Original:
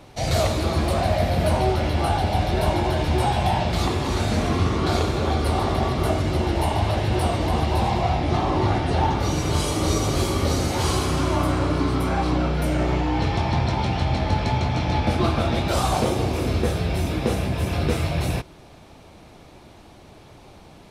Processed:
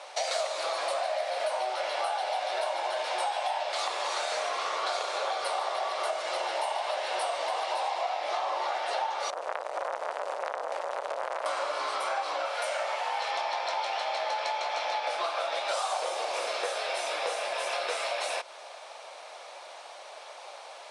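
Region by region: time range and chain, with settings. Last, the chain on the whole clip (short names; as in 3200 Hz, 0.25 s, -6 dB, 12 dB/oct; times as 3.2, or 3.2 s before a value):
9.3–11.46 median filter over 41 samples + HPF 51 Hz + core saturation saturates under 1100 Hz
12.45–13.31 bell 330 Hz -13 dB 0.58 oct + requantised 8-bit, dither none
whole clip: Chebyshev band-pass 550–9700 Hz, order 4; compressor, threshold -35 dBFS; gain +6.5 dB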